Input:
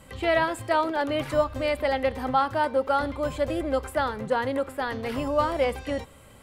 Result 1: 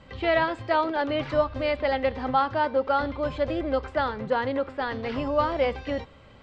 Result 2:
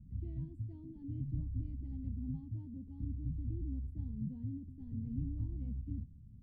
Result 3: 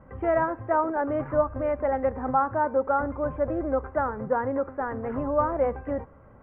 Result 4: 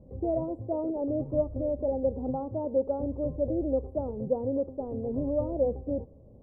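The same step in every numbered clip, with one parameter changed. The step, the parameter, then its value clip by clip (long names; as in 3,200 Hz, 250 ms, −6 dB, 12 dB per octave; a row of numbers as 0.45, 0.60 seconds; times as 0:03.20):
inverse Chebyshev low-pass filter, stop band from: 11,000, 520, 3,900, 1,500 Hertz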